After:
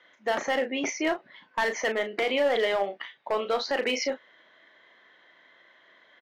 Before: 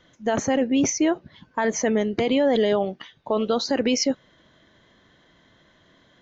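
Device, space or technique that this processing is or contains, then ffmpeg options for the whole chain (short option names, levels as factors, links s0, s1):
megaphone: -filter_complex "[0:a]highpass=550,lowpass=3400,equalizer=f=2000:t=o:w=0.48:g=6.5,asoftclip=type=hard:threshold=0.1,asplit=2[s0][s1];[s1]adelay=35,volume=0.376[s2];[s0][s2]amix=inputs=2:normalize=0"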